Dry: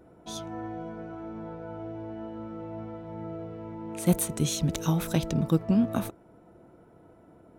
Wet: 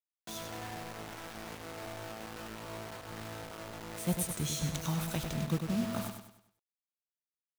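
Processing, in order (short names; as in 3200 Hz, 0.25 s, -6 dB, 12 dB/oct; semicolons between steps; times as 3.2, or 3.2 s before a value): dynamic EQ 320 Hz, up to -7 dB, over -39 dBFS, Q 0.88; requantised 6-bit, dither none; feedback echo 99 ms, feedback 40%, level -6.5 dB; gain -6 dB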